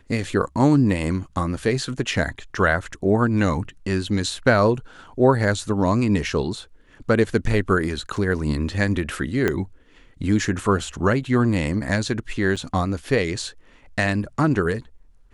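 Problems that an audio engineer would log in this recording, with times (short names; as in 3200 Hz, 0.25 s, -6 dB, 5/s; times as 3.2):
8.16 gap 3.2 ms
9.48 pop -8 dBFS
12.56–12.57 gap 6.4 ms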